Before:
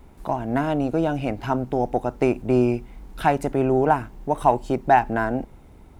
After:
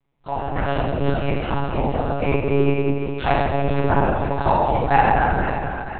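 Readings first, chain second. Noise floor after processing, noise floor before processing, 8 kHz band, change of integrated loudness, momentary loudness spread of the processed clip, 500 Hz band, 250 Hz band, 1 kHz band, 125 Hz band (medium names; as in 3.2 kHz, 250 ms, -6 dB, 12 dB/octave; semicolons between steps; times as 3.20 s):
-31 dBFS, -47 dBFS, no reading, +1.5 dB, 7 LU, +1.0 dB, -0.5 dB, +2.5 dB, +5.5 dB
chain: treble shelf 2 kHz +11.5 dB; gate -34 dBFS, range -24 dB; on a send: echo whose repeats swap between lows and highs 239 ms, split 800 Hz, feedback 66%, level -4 dB; on the sum: gated-style reverb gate 420 ms falling, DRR -6 dB; monotone LPC vocoder at 8 kHz 140 Hz; trim -6.5 dB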